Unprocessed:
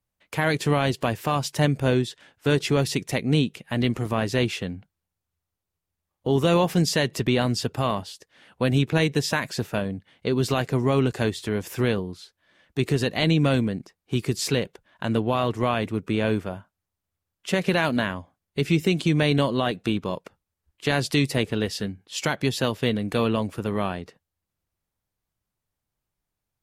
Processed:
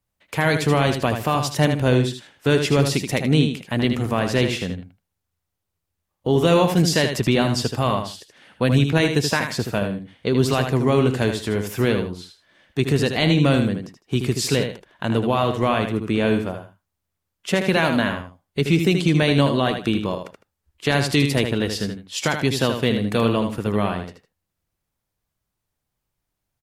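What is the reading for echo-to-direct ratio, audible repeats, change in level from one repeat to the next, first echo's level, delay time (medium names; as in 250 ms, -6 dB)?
-7.0 dB, 2, -12.5 dB, -7.0 dB, 78 ms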